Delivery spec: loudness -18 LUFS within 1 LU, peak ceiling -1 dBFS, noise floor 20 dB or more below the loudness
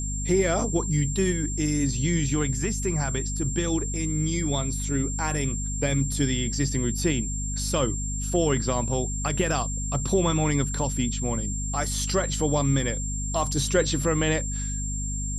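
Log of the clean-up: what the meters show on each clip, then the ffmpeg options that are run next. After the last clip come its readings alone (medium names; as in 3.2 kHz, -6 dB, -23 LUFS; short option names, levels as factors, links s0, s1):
hum 50 Hz; highest harmonic 250 Hz; hum level -28 dBFS; steady tone 7.4 kHz; tone level -32 dBFS; loudness -25.5 LUFS; peak level -9.5 dBFS; loudness target -18.0 LUFS
-> -af "bandreject=f=50:t=h:w=6,bandreject=f=100:t=h:w=6,bandreject=f=150:t=h:w=6,bandreject=f=200:t=h:w=6,bandreject=f=250:t=h:w=6"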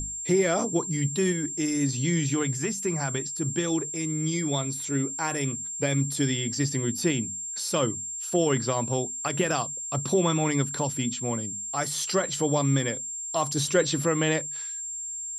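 hum not found; steady tone 7.4 kHz; tone level -32 dBFS
-> -af "bandreject=f=7400:w=30"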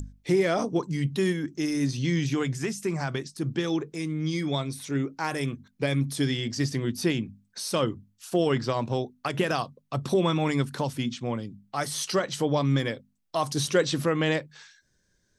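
steady tone not found; loudness -28.0 LUFS; peak level -10.0 dBFS; loudness target -18.0 LUFS
-> -af "volume=3.16,alimiter=limit=0.891:level=0:latency=1"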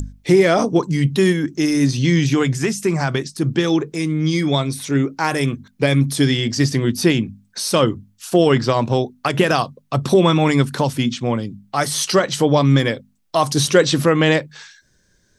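loudness -18.0 LUFS; peak level -1.0 dBFS; noise floor -60 dBFS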